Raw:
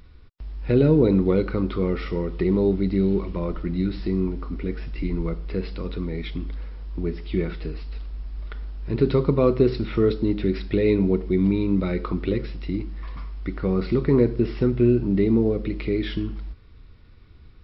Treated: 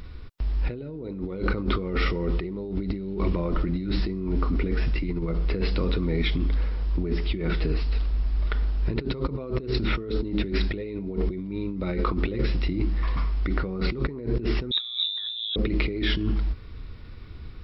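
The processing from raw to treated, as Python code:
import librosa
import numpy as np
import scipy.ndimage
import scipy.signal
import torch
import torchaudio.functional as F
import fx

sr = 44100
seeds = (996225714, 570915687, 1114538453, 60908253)

y = fx.over_compress(x, sr, threshold_db=-30.0, ratio=-1.0)
y = fx.freq_invert(y, sr, carrier_hz=3800, at=(14.71, 15.56))
y = F.gain(torch.from_numpy(y), 3.0).numpy()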